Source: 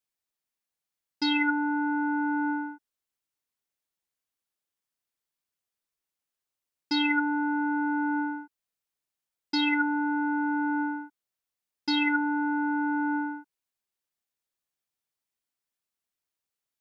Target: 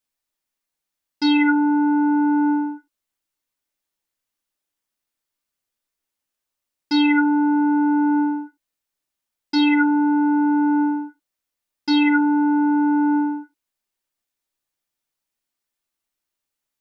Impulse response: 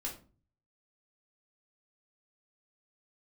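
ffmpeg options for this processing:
-filter_complex "[0:a]asplit=2[a][b];[1:a]atrim=start_sample=2205,atrim=end_sample=4410[c];[b][c]afir=irnorm=-1:irlink=0,volume=0dB[d];[a][d]amix=inputs=2:normalize=0"

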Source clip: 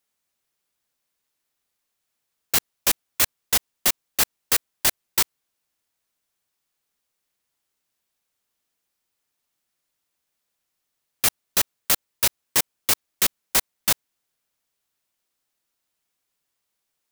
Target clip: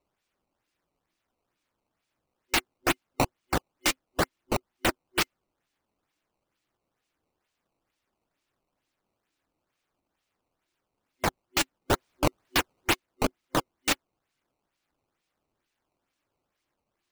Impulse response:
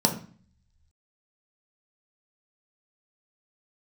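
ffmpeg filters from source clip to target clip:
-filter_complex "[0:a]aphaser=in_gain=1:out_gain=1:delay=3.9:decay=0.48:speed=0.9:type=triangular,asettb=1/sr,asplit=3[a][b][c];[a]atrim=end=11.914[d];[b]atrim=start=11.91:end=12.93,asetpts=PTS-STARTPTS,afade=t=in:d=0.004:c=qsin,afade=t=out:st=1.016:d=0.004:c=qsin,equalizer=f=12k:t=o:w=1.8:g=11[e];[c]atrim=start=12.926[f];[d][e]acrossfade=d=0.004:c1=hsin:c2=qsin[g];[g][f]acrossfade=d=0.004:c1=qsin:c2=hsin,acrossover=split=3100[h][i];[i]acompressor=threshold=-15dB:ratio=4:attack=1:release=60[j];[h][j]amix=inputs=2:normalize=0,superequalizer=6b=3.16:7b=0.562:12b=1.78,acrossover=split=1100[k][l];[l]acrusher=samples=15:mix=1:aa=0.000001:lfo=1:lforange=24:lforate=2.2[m];[k][m]amix=inputs=2:normalize=0,volume=-4.5dB"

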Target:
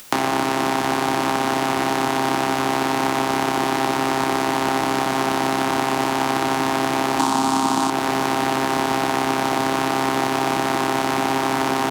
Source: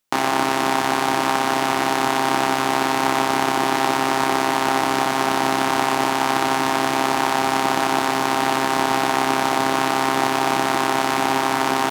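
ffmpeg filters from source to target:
-filter_complex "[0:a]acompressor=mode=upward:threshold=-27dB:ratio=2.5,asettb=1/sr,asplit=3[a][b][c];[a]atrim=end=7.194[d];[b]atrim=start=7.19:end=7.9,asetpts=PTS-STARTPTS,afade=t=in:d=0.004:c=qsin,afade=t=out:st=0.706:d=0.004:c=qsin,equalizer=f=250:t=o:w=1:g=10,equalizer=f=500:t=o:w=1:g=-7,equalizer=f=1k:t=o:w=1:g=10,equalizer=f=2k:t=o:w=1:g=-5,equalizer=f=4k:t=o:w=1:g=5,equalizer=f=8k:t=o:w=1:g=10[e];[c]atrim=start=7.896[f];[d][e]acrossfade=d=0.004:c1=hsin:c2=qsin[g];[g][f]acrossfade=d=0.004:c1=qsin:c2=hsin,acrossover=split=210|640|1600[h][i][j][k];[h]acompressor=threshold=-37dB:ratio=4[l];[i]acompressor=threshold=-30dB:ratio=4[m];[j]acompressor=threshold=-31dB:ratio=4[n];[k]acompressor=threshold=-32dB:ratio=4[o];[l][m][n][o]amix=inputs=4:normalize=0,volume=6dB"

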